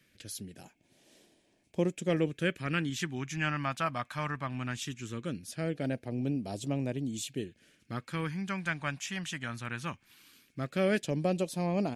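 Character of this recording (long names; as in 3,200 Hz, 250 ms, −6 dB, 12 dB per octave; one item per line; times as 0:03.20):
phaser sweep stages 2, 0.19 Hz, lowest notch 420–1,400 Hz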